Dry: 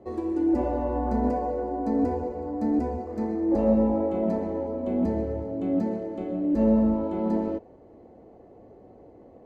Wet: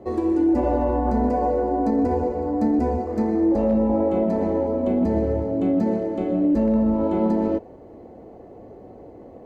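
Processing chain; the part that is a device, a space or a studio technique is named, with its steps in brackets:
clipper into limiter (hard clipping −12.5 dBFS, distortion −43 dB; brickwall limiter −20.5 dBFS, peak gain reduction 8 dB)
level +7.5 dB

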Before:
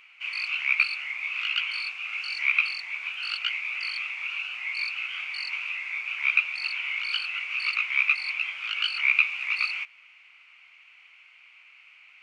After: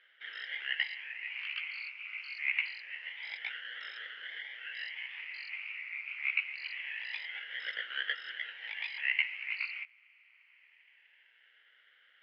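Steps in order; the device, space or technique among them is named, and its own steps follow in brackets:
voice changer toy (ring modulator whose carrier an LFO sweeps 420 Hz, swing 75%, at 0.25 Hz; loudspeaker in its box 450–4,300 Hz, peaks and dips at 470 Hz +4 dB, 700 Hz −8 dB, 1,100 Hz −7 dB, 2,100 Hz +6 dB, 3,600 Hz −8 dB)
level −8.5 dB

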